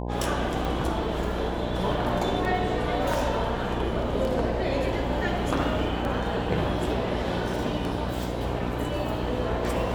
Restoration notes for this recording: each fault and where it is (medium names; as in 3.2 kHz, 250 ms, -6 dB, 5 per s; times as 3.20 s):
buzz 60 Hz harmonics 17 -31 dBFS
tick 33 1/3 rpm